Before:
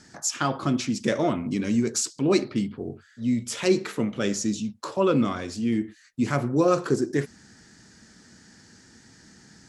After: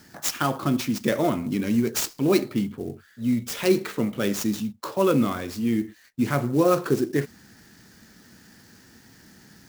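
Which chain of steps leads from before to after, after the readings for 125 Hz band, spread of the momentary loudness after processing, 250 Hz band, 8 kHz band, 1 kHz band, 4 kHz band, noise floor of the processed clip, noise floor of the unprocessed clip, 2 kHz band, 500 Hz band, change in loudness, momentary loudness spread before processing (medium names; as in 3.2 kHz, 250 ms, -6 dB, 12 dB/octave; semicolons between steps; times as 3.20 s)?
+1.0 dB, 9 LU, +1.0 dB, -2.0 dB, +1.0 dB, +0.5 dB, -54 dBFS, -55 dBFS, +1.0 dB, +1.0 dB, +1.0 dB, 9 LU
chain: sampling jitter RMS 0.024 ms; trim +1 dB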